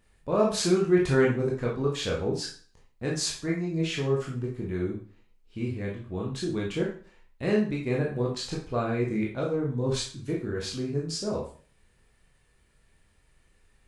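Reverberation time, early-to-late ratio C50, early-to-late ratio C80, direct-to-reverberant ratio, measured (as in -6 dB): 0.40 s, 5.0 dB, 10.5 dB, -3.5 dB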